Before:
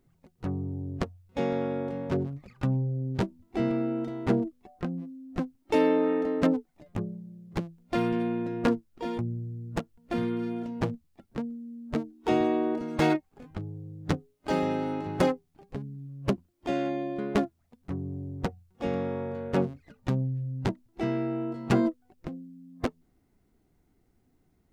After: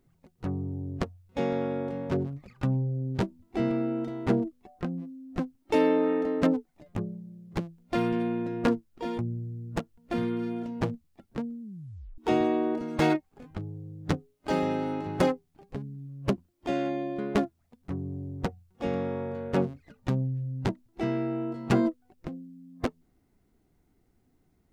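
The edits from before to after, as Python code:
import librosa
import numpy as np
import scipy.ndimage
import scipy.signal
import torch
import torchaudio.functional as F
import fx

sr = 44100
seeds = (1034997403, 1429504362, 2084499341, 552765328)

y = fx.edit(x, sr, fx.tape_stop(start_s=11.62, length_s=0.56), tone=tone)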